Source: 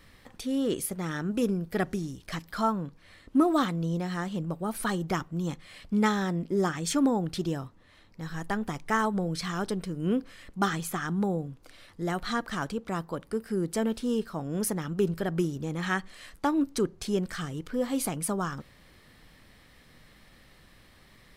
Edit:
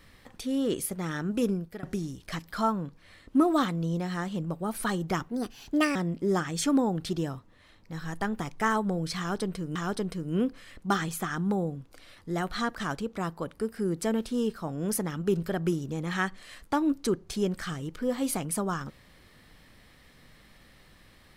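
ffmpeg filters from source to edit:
-filter_complex "[0:a]asplit=5[s0][s1][s2][s3][s4];[s0]atrim=end=1.83,asetpts=PTS-STARTPTS,afade=t=out:st=1.53:d=0.3:silence=0.0668344[s5];[s1]atrim=start=1.83:end=5.294,asetpts=PTS-STARTPTS,afade=t=in:d=0.004:c=hsin:silence=0.0668344[s6];[s2]atrim=start=5.29:end=6.24,asetpts=PTS-STARTPTS,asetrate=63063,aresample=44100,atrim=end_sample=29297,asetpts=PTS-STARTPTS[s7];[s3]atrim=start=6.236:end=10.042[s8];[s4]atrim=start=9.468[s9];[s5][s6]concat=n=2:v=0:a=1[s10];[s10][s7]acrossfade=d=0.004:c1=hsin:c2=hsin[s11];[s11][s8]acrossfade=d=0.004:c1=hsin:c2=hsin[s12];[s12][s9]acrossfade=d=0.004:c1=hsin:c2=hsin"

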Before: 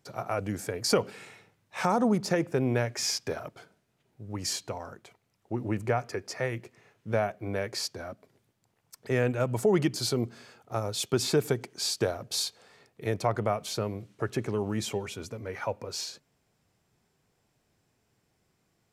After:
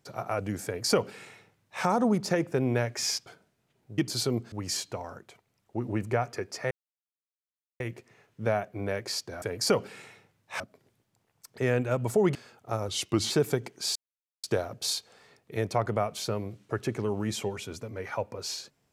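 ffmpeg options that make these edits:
-filter_complex "[0:a]asplit=11[s0][s1][s2][s3][s4][s5][s6][s7][s8][s9][s10];[s0]atrim=end=3.262[s11];[s1]atrim=start=3.558:end=4.282[s12];[s2]atrim=start=9.838:end=10.382[s13];[s3]atrim=start=4.278:end=6.47,asetpts=PTS-STARTPTS,afade=t=out:st=2.188:d=0.004:c=hsin,apad=pad_dur=1.09[s14];[s4]atrim=start=6.47:end=8.092,asetpts=PTS-STARTPTS,afade=t=in:d=0.004:c=hsin[s15];[s5]atrim=start=0.648:end=1.832[s16];[s6]atrim=start=8.088:end=9.842[s17];[s7]atrim=start=10.378:end=10.914[s18];[s8]atrim=start=10.91:end=11.28,asetpts=PTS-STARTPTS,asetrate=38367,aresample=44100,atrim=end_sample=18755,asetpts=PTS-STARTPTS[s19];[s9]atrim=start=11.276:end=11.93,asetpts=PTS-STARTPTS,afade=t=out:st=0.65:d=0.004:c=hsin,apad=pad_dur=0.48[s20];[s10]atrim=start=11.93,asetpts=PTS-STARTPTS,afade=t=in:d=0.004:c=hsin[s21];[s11][s12]acrossfade=d=0.004:c1=hsin:c2=hsin[s22];[s22][s13]acrossfade=d=0.004:c1=hsin:c2=hsin[s23];[s14][s15]concat=n=2:v=0:a=1[s24];[s23][s24]acrossfade=d=0.004:c1=hsin:c2=hsin[s25];[s25][s16]acrossfade=d=0.004:c1=hsin:c2=hsin[s26];[s26][s17]acrossfade=d=0.004:c1=hsin:c2=hsin[s27];[s27][s18]acrossfade=d=0.004:c1=hsin:c2=hsin[s28];[s28][s19]acrossfade=d=0.004:c1=hsin:c2=hsin[s29];[s20][s21]concat=n=2:v=0:a=1[s30];[s29][s30]acrossfade=d=0.004:c1=hsin:c2=hsin"

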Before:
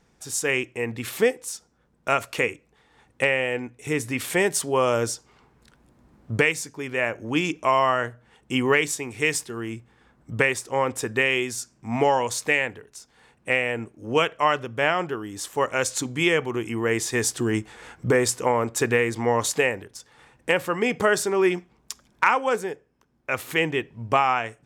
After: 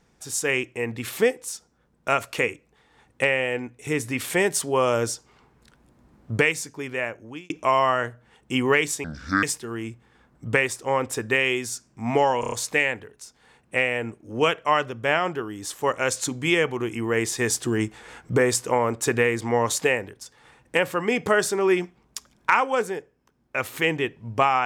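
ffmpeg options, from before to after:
-filter_complex "[0:a]asplit=8[s0][s1][s2][s3][s4][s5][s6][s7];[s0]atrim=end=7.5,asetpts=PTS-STARTPTS,afade=t=out:st=6.8:d=0.7[s8];[s1]atrim=start=7.5:end=9.044,asetpts=PTS-STARTPTS,afade=t=in:d=0.004:c=hsin[s9];[s2]atrim=start=9.04:end=9.29,asetpts=PTS-STARTPTS,asetrate=28224,aresample=44100[s10];[s3]atrim=start=9.286:end=12.292[s11];[s4]atrim=start=12.258:end=12.292[s12];[s5]atrim=start=12.258:end=12.292[s13];[s6]atrim=start=12.258:end=12.292[s14];[s7]atrim=start=12.258[s15];[s8][s9]concat=n=2:v=0:a=1[s16];[s16][s10]acrossfade=d=0.004:c1=hsin:c2=hsin[s17];[s17][s11]acrossfade=d=0.004:c1=hsin:c2=hsin[s18];[s18][s12]acrossfade=d=0.004:c1=hsin:c2=hsin[s19];[s19][s13]acrossfade=d=0.004:c1=hsin:c2=hsin[s20];[s20][s14]acrossfade=d=0.004:c1=hsin:c2=hsin[s21];[s21][s15]acrossfade=d=0.004:c1=hsin:c2=hsin"

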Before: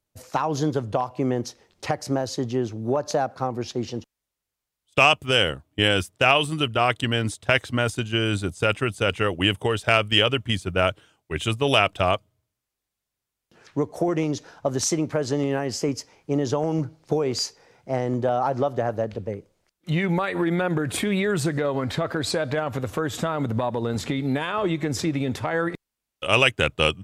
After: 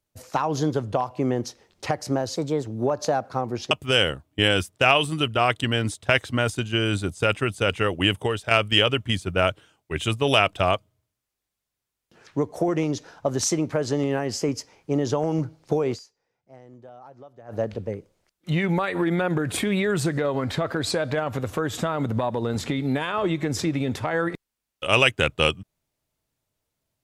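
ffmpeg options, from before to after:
-filter_complex "[0:a]asplit=7[s0][s1][s2][s3][s4][s5][s6];[s0]atrim=end=2.364[s7];[s1]atrim=start=2.36:end=2.72,asetpts=PTS-STARTPTS,asetrate=52920,aresample=44100[s8];[s2]atrim=start=2.716:end=3.772[s9];[s3]atrim=start=5.108:end=9.91,asetpts=PTS-STARTPTS,afade=t=out:st=4.492:d=0.31:silence=0.446684[s10];[s4]atrim=start=9.91:end=17.55,asetpts=PTS-STARTPTS,afade=t=in:d=0.004:c=hsin:silence=0.446684,afade=t=out:st=7.43:d=0.21:c=exp:silence=0.0749894[s11];[s5]atrim=start=17.55:end=18.72,asetpts=PTS-STARTPTS,volume=0.075[s12];[s6]atrim=start=18.72,asetpts=PTS-STARTPTS,afade=t=in:d=0.21:c=exp:silence=0.0749894[s13];[s7][s8]acrossfade=d=0.004:c1=hsin:c2=hsin[s14];[s14][s9]acrossfade=d=0.004:c1=hsin:c2=hsin[s15];[s10][s11][s12][s13]concat=n=4:v=0:a=1[s16];[s15][s16]acrossfade=d=0.004:c1=hsin:c2=hsin"

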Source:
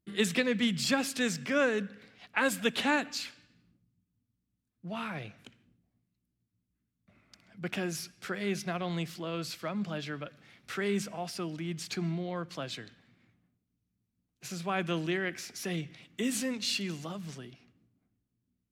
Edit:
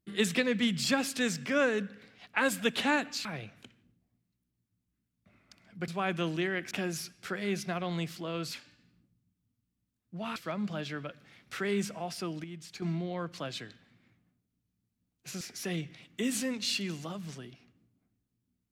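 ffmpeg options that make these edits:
-filter_complex "[0:a]asplit=9[s0][s1][s2][s3][s4][s5][s6][s7][s8];[s0]atrim=end=3.252[s9];[s1]atrim=start=5.068:end=7.702[s10];[s2]atrim=start=14.578:end=15.412[s11];[s3]atrim=start=7.698:end=9.532[s12];[s4]atrim=start=3.248:end=5.072[s13];[s5]atrim=start=9.528:end=11.612[s14];[s6]atrim=start=11.608:end=11.992,asetpts=PTS-STARTPTS,volume=0.398[s15];[s7]atrim=start=11.988:end=14.582[s16];[s8]atrim=start=15.408[s17];[s9][s10]acrossfade=d=0.004:c1=hsin:c2=hsin[s18];[s18][s11]acrossfade=d=0.004:c1=hsin:c2=hsin[s19];[s19][s12]acrossfade=d=0.004:c1=hsin:c2=hsin[s20];[s20][s13]acrossfade=d=0.004:c1=hsin:c2=hsin[s21];[s21][s14]acrossfade=d=0.004:c1=hsin:c2=hsin[s22];[s22][s15]acrossfade=d=0.004:c1=hsin:c2=hsin[s23];[s23][s16]acrossfade=d=0.004:c1=hsin:c2=hsin[s24];[s24][s17]acrossfade=d=0.004:c1=hsin:c2=hsin"

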